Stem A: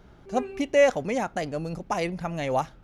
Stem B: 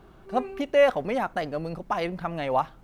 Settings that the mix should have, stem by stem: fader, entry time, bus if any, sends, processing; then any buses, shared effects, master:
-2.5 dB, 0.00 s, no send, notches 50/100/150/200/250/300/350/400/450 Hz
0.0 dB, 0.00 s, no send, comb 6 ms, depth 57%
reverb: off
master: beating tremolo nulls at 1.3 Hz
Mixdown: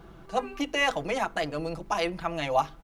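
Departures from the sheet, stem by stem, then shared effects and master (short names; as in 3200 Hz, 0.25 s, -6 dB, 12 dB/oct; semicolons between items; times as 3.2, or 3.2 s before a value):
stem B: polarity flipped; master: missing beating tremolo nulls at 1.3 Hz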